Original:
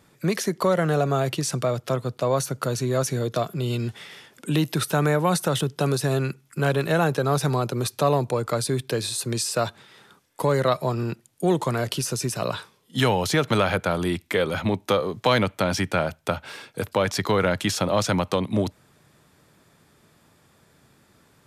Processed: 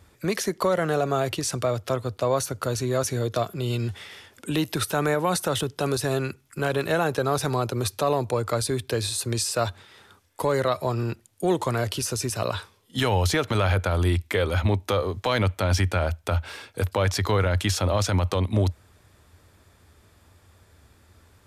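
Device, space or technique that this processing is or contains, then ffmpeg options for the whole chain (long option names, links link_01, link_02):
car stereo with a boomy subwoofer: -af "lowshelf=frequency=110:width_type=q:width=3:gain=8.5,alimiter=limit=-13dB:level=0:latency=1:release=33"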